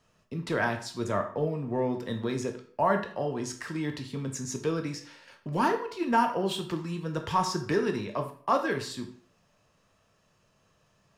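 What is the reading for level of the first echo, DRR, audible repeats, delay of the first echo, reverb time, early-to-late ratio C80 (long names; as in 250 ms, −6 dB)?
no echo audible, 4.5 dB, no echo audible, no echo audible, 0.55 s, 13.5 dB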